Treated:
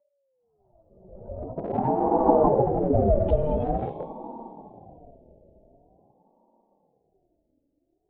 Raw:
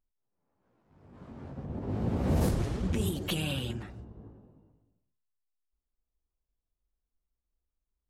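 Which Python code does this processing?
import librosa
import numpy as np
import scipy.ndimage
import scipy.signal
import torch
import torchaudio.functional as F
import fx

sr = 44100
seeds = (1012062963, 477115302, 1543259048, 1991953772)

p1 = fx.spec_expand(x, sr, power=2.0)
p2 = fx.peak_eq(p1, sr, hz=380.0, db=13.5, octaves=0.86)
p3 = fx.hum_notches(p2, sr, base_hz=60, count=9)
p4 = fx.echo_diffused(p3, sr, ms=555, feedback_pct=47, wet_db=-16)
p5 = fx.schmitt(p4, sr, flips_db=-33.5)
p6 = p4 + (p5 * 10.0 ** (-10.0 / 20.0))
p7 = fx.env_lowpass(p6, sr, base_hz=410.0, full_db=-24.0)
p8 = p7 + 0.49 * np.pad(p7, (int(3.4 * sr / 1000.0), 0))[:len(p7)]
p9 = fx.env_lowpass_down(p8, sr, base_hz=790.0, full_db=-26.0)
p10 = fx.ring_lfo(p9, sr, carrier_hz=430.0, swing_pct=35, hz=0.46)
y = p10 * 10.0 ** (8.5 / 20.0)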